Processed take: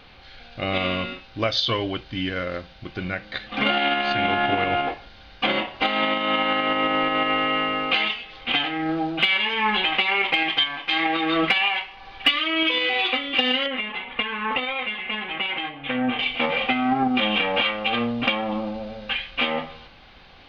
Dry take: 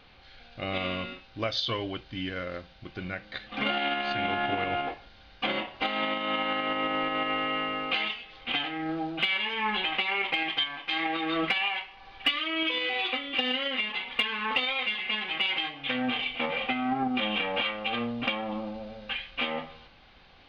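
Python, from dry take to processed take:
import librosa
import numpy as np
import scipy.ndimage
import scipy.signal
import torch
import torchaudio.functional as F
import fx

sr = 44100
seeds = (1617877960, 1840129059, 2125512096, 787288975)

y = fx.air_absorb(x, sr, metres=400.0, at=(13.66, 16.19))
y = F.gain(torch.from_numpy(y), 7.0).numpy()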